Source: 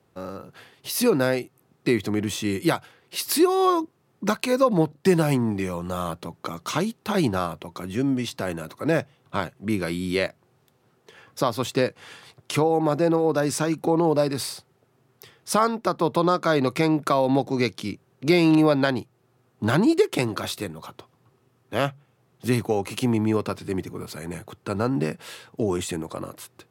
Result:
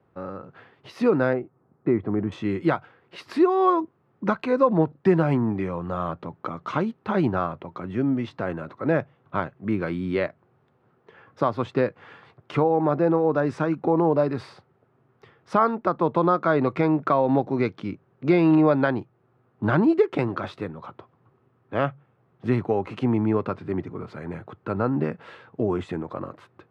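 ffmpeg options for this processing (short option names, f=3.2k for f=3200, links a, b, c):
-filter_complex "[0:a]asettb=1/sr,asplit=3[a][b][c];[a]atrim=end=1.334[d];[b]atrim=start=1.33:end=2.32,asetpts=PTS-STARTPTS,afade=t=in:d=0.004:c=qsin,afade=t=out:st=0.986:d=0.004:c=qsin,lowpass=1.3k[e];[c]atrim=start=2.316[f];[d][e]acrossfade=d=0.004:c1=hsin:c2=qsin[g];[g][f]acrossfade=d=0.004:c1=qsin:c2=hsin,lowpass=1.8k,equalizer=f=1.3k:t=o:w=0.63:g=2.5"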